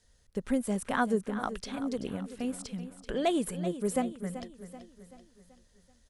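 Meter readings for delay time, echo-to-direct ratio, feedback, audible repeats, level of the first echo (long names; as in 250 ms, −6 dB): 383 ms, −11.5 dB, 48%, 4, −12.5 dB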